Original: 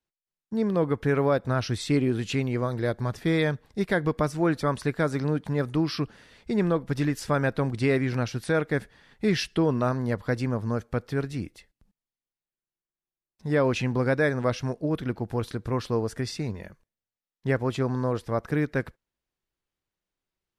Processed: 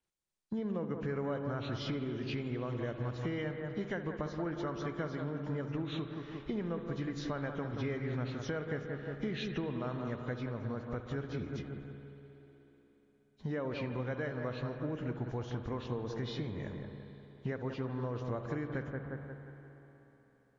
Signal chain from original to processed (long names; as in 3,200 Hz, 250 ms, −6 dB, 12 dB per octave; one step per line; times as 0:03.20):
hearing-aid frequency compression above 2,100 Hz 1.5 to 1
bucket-brigade delay 177 ms, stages 2,048, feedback 45%, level −9 dB
downward compressor 6 to 1, threshold −35 dBFS, peak gain reduction 16 dB
on a send at −8 dB: convolution reverb RT60 4.1 s, pre-delay 63 ms